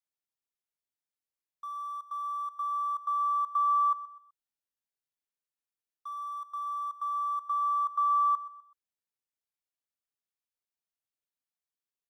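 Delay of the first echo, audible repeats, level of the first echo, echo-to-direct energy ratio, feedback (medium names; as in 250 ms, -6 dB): 126 ms, 3, -16.0 dB, -15.5 dB, 34%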